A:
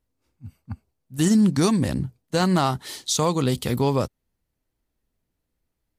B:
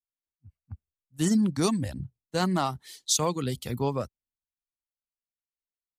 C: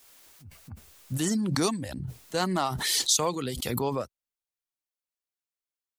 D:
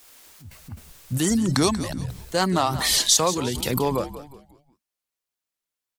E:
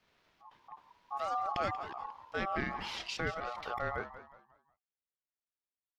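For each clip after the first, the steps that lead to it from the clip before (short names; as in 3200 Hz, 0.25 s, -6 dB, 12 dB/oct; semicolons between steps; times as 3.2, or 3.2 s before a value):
reverb removal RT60 0.73 s; three-band expander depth 70%; gain -5.5 dB
tone controls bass -8 dB, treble +1 dB; backwards sustainer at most 26 dB/s
frequency-shifting echo 0.18 s, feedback 39%, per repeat -70 Hz, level -13 dB; wow and flutter 69 cents; gain +5.5 dB
ring modulator 970 Hz; air absorption 270 m; gain -9 dB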